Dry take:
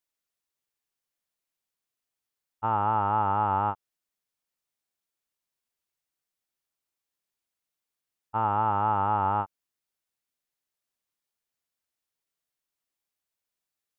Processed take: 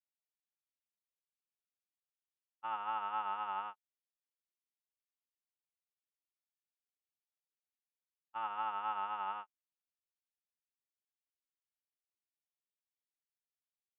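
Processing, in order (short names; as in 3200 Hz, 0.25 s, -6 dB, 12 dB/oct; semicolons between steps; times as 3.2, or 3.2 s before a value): band-pass 2900 Hz, Q 1.8; comb 5.5 ms, depth 65%; upward expander 2.5:1, over -48 dBFS; gain +2 dB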